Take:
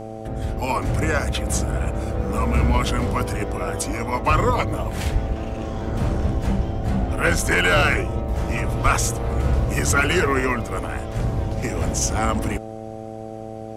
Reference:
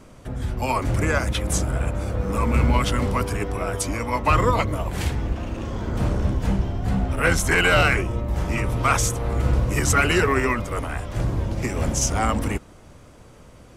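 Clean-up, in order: de-hum 110.3 Hz, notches 7; de-plosive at 5.12/8.84

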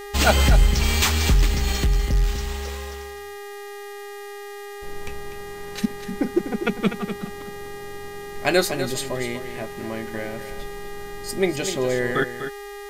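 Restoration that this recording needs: de-hum 406.5 Hz, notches 30; notch 1900 Hz, Q 30; expander -28 dBFS, range -21 dB; inverse comb 0.247 s -10 dB

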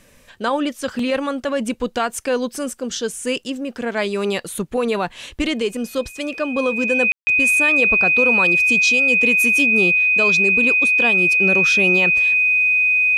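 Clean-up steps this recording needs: notch 2500 Hz, Q 30; room tone fill 7.12–7.27

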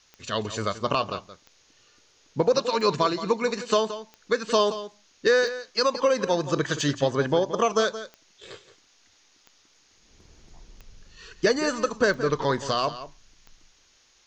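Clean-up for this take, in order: de-click; expander -53 dBFS, range -21 dB; inverse comb 0.173 s -13 dB

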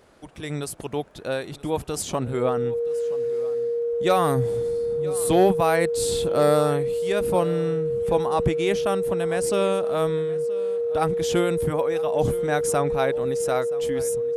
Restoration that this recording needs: de-click; notch 470 Hz, Q 30; inverse comb 0.974 s -19.5 dB

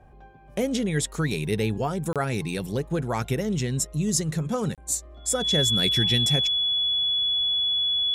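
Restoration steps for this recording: notch 3400 Hz, Q 30; interpolate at 2.13/4.75, 27 ms

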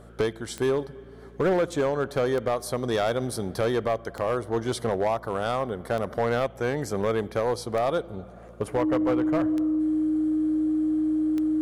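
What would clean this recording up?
clip repair -18.5 dBFS; de-click; de-hum 57.7 Hz, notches 4; notch 310 Hz, Q 30

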